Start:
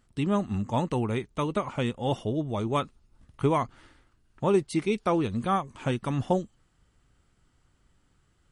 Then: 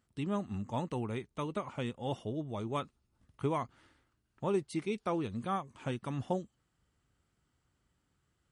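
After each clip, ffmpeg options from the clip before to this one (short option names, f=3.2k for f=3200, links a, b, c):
-af "highpass=58,volume=-8.5dB"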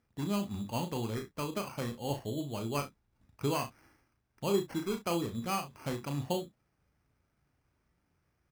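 -af "acrusher=samples=12:mix=1:aa=0.000001,aecho=1:1:35|65:0.473|0.178"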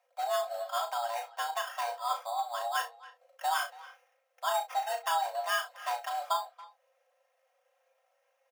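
-filter_complex "[0:a]aecho=1:1:3.6:0.86,asplit=2[a][b];[b]adelay=280,highpass=300,lowpass=3.4k,asoftclip=type=hard:threshold=-26dB,volume=-17dB[c];[a][c]amix=inputs=2:normalize=0,afreqshift=470"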